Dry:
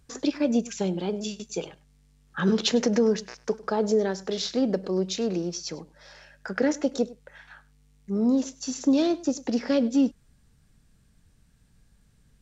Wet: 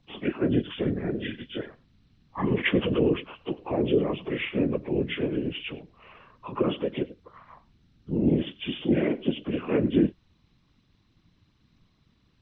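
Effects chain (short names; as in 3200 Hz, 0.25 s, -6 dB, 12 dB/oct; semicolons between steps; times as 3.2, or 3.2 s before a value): inharmonic rescaling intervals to 78%; whisperiser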